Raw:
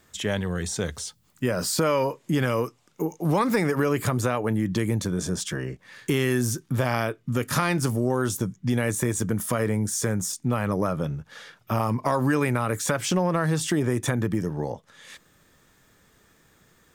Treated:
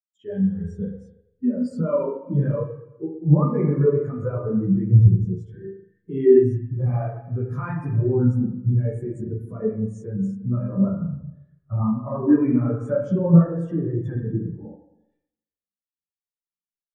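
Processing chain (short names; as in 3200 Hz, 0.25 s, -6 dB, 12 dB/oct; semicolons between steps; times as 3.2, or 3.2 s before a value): chorus voices 2, 1.5 Hz, delay 13 ms, depth 3 ms; spring tank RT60 2 s, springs 36/41 ms, chirp 30 ms, DRR -2 dB; spectral expander 2.5:1; gain +5.5 dB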